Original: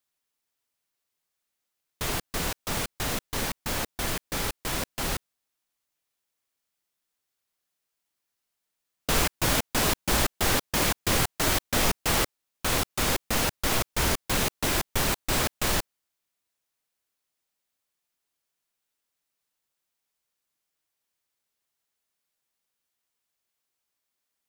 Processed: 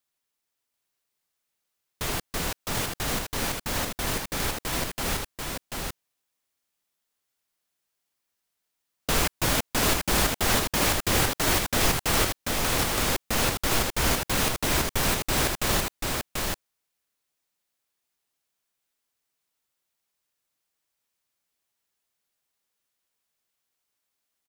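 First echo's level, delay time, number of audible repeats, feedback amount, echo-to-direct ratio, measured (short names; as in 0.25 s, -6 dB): -3.5 dB, 0.738 s, 1, no steady repeat, -3.5 dB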